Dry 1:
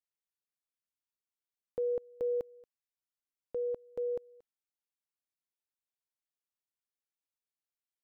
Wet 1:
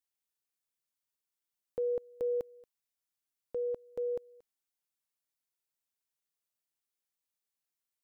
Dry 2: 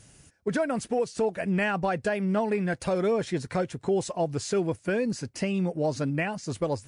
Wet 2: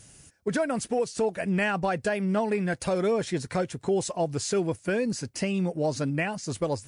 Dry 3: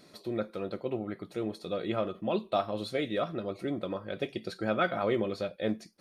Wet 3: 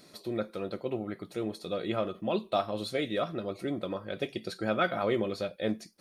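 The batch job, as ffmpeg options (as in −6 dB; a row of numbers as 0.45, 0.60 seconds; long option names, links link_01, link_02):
-af "highshelf=frequency=4900:gain=6"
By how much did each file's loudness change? 0.0, 0.0, 0.0 LU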